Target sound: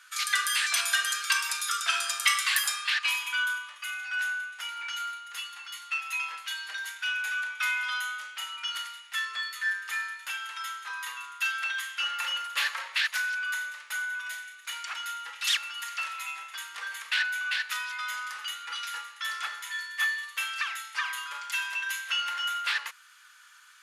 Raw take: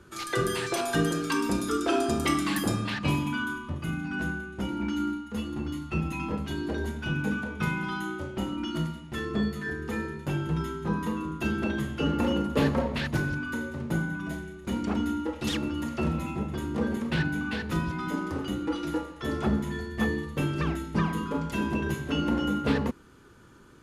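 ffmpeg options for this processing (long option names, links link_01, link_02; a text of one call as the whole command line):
ffmpeg -i in.wav -af "highpass=frequency=1500:width=0.5412,highpass=frequency=1500:width=1.3066,volume=8.5dB" out.wav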